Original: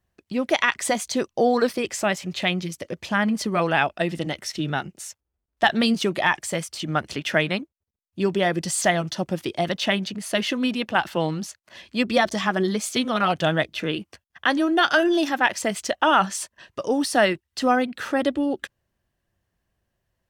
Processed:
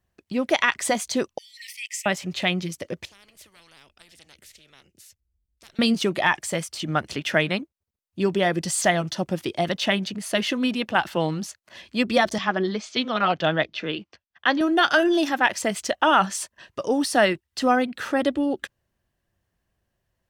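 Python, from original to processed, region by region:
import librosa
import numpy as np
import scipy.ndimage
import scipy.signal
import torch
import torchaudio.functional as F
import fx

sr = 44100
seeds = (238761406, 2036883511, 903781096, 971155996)

y = fx.chain(x, sr, fx.brickwall_highpass(low_hz=1800.0),
    fx.peak_eq(hz=4000.0, db=-8.0, octaves=0.51), at=(1.38, 2.06))
y = fx.chain(y, sr, fx.tone_stack(knobs='10-0-1'),
    fx.spectral_comp(ratio=10.0), at=(3.05, 5.79))
y = fx.chain(y, sr, fx.lowpass(hz=5400.0, slope=24),
    fx.peak_eq(hz=77.0, db=-7.0, octaves=2.2),
    fx.band_widen(depth_pct=40), at=(12.38, 14.61))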